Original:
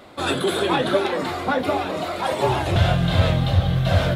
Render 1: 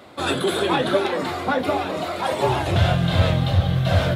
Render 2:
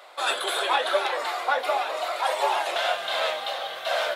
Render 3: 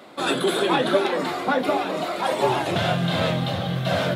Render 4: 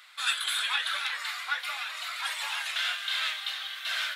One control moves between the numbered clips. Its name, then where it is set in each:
HPF, cutoff: 57, 590, 150, 1500 Hz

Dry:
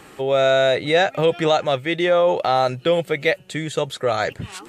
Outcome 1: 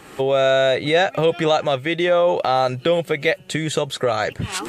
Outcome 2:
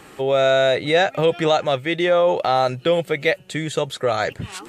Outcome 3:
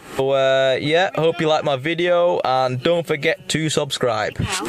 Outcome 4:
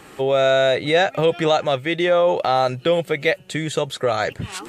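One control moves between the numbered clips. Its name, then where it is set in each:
recorder AGC, rising by: 33, 5.2, 86, 13 dB/s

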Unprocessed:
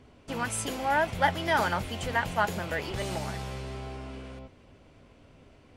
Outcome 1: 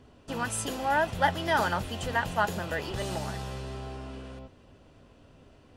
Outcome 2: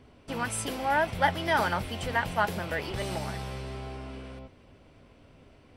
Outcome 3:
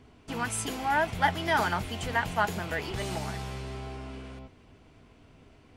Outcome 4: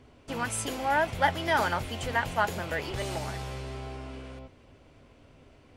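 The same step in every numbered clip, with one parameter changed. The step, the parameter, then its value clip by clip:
notch, frequency: 2200, 6800, 550, 190 Hz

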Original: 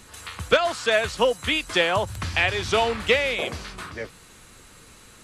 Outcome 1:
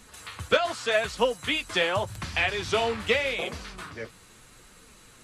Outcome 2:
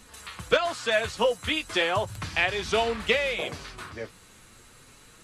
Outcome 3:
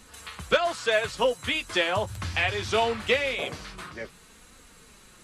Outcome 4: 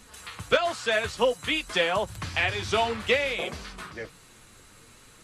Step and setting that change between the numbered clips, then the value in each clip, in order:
flange, rate: 0.83, 0.35, 0.22, 0.54 Hz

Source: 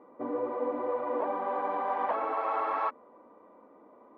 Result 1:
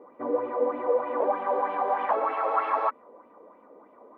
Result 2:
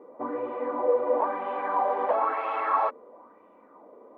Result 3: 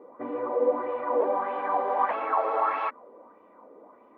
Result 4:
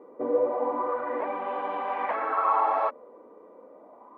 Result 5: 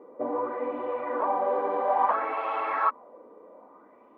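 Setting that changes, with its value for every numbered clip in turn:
LFO bell, rate: 3.2, 1, 1.6, 0.3, 0.6 Hz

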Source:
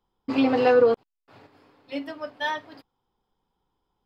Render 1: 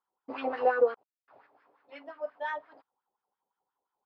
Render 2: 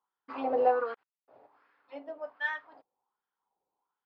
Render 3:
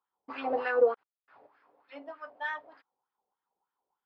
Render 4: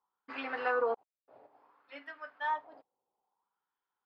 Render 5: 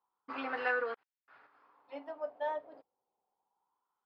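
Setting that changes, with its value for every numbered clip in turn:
wah, rate: 5.7, 1.3, 3.3, 0.59, 0.27 Hz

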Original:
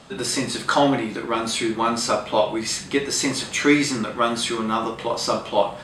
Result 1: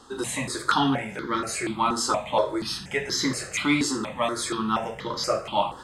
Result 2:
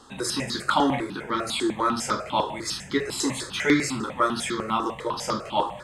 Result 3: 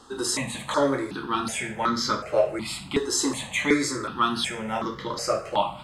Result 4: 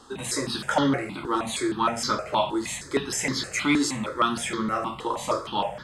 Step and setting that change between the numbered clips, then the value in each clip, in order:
step phaser, rate: 4.2, 10, 2.7, 6.4 Hz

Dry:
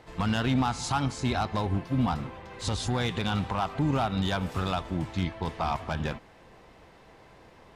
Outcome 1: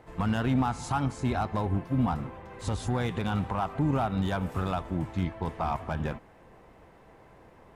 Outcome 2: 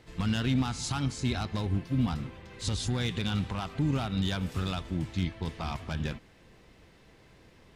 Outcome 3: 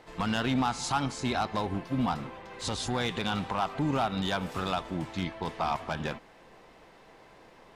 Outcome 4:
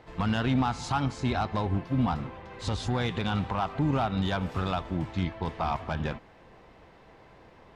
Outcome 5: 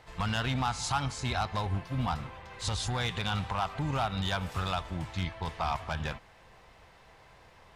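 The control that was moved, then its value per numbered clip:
bell, frequency: 4400, 840, 75, 12000, 290 Hz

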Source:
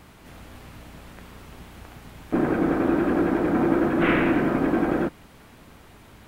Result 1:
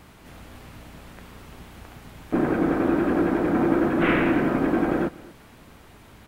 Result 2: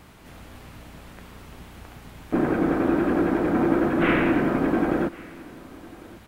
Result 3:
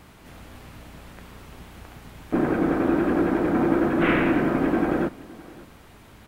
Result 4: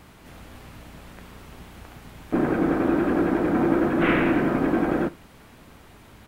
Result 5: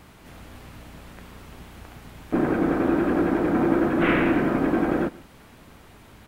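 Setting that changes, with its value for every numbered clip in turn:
echo, time: 241, 1101, 565, 72, 134 ms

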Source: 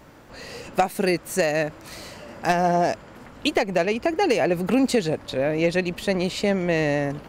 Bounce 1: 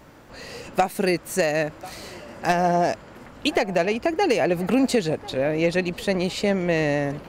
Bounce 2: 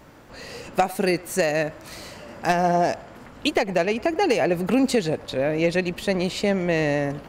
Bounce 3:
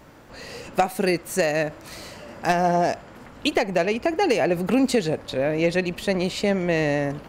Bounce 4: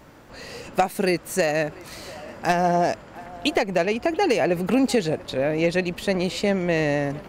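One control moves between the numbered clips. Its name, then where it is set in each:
narrowing echo, time: 1042, 102, 60, 689 ms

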